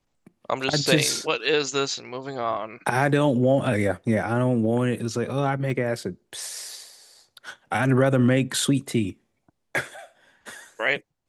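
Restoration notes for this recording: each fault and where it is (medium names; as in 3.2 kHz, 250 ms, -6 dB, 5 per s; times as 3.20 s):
5.70 s: dropout 2 ms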